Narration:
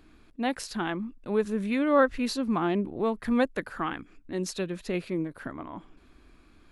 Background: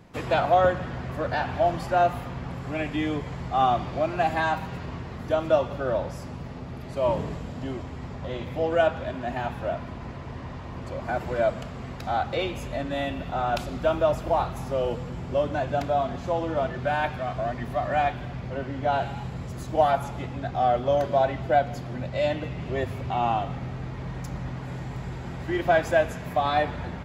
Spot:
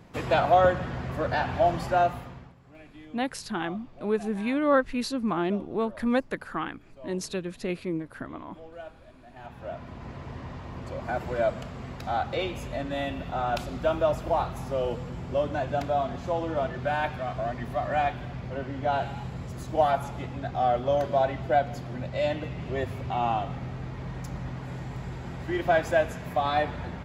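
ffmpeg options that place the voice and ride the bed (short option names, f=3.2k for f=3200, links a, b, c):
-filter_complex "[0:a]adelay=2750,volume=-0.5dB[a];[1:a]volume=19dB,afade=t=out:st=1.87:d=0.67:silence=0.0891251,afade=t=in:st=9.3:d=0.91:silence=0.112202[b];[a][b]amix=inputs=2:normalize=0"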